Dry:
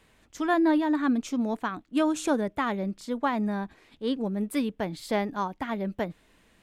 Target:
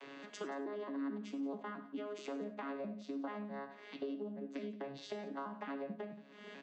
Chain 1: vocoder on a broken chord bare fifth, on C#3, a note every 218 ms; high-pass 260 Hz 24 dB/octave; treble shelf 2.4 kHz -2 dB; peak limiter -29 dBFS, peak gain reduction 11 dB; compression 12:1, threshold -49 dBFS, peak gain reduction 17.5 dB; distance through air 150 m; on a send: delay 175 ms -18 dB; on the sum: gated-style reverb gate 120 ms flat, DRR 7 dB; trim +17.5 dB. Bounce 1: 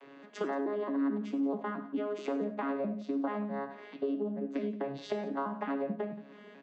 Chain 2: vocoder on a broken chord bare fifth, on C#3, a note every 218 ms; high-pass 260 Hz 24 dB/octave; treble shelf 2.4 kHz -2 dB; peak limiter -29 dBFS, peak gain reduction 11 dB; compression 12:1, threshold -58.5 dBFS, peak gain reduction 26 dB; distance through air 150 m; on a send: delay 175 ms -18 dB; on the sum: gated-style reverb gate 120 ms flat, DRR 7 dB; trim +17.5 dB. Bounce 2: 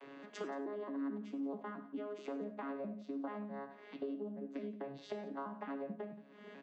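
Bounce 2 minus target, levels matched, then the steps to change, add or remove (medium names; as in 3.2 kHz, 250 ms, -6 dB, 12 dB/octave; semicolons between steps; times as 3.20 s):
4 kHz band -5.5 dB
change: treble shelf 2.4 kHz +9.5 dB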